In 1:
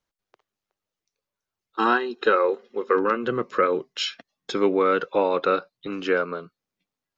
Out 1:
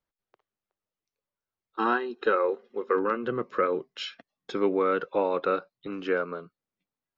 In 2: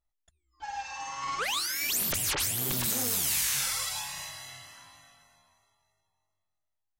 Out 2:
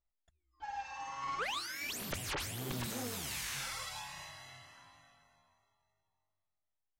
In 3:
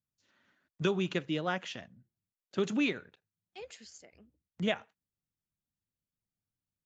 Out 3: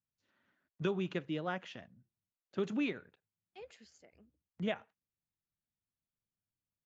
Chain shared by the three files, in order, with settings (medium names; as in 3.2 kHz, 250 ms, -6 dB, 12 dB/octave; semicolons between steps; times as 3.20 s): low-pass 2.4 kHz 6 dB/octave; trim -4 dB